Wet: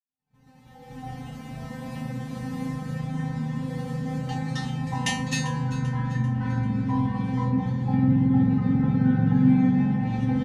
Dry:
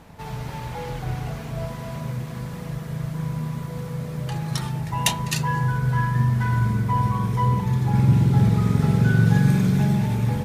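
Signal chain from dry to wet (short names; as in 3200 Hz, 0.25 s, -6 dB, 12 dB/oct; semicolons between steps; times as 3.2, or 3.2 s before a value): opening faded in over 3.01 s; bell 160 Hz +13.5 dB 2 oct; expander -29 dBFS; treble ducked by the level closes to 2100 Hz, closed at -4 dBFS; in parallel at +2 dB: compressor, threshold -15 dBFS, peak gain reduction 14 dB; on the sum: resonator 260 Hz, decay 0.34 s, harmonics all, mix 100%; small resonant body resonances 800/1800 Hz, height 8 dB, ringing for 45 ms; on a send: feedback echo 0.392 s, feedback 47%, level -16 dB; on the sum: gain +7 dB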